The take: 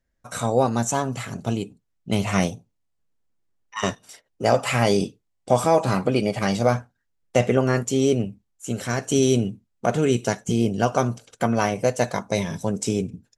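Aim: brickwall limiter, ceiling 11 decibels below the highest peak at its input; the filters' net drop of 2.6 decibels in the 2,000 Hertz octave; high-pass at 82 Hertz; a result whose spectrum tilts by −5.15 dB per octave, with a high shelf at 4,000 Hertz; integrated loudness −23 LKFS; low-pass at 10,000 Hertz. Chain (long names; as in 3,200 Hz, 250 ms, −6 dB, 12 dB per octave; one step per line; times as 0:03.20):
high-pass filter 82 Hz
low-pass filter 10,000 Hz
parametric band 2,000 Hz −4 dB
high-shelf EQ 4,000 Hz +3 dB
level +4.5 dB
brickwall limiter −10.5 dBFS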